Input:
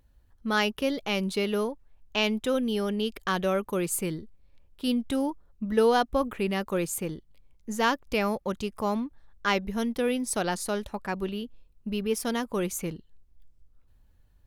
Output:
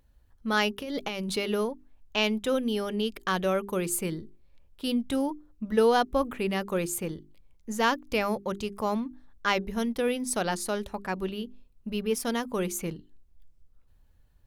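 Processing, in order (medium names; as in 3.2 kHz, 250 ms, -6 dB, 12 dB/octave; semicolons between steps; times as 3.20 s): 0.81–1.37 s: compressor with a negative ratio -32 dBFS, ratio -1; hum notches 50/100/150/200/250/300/350/400 Hz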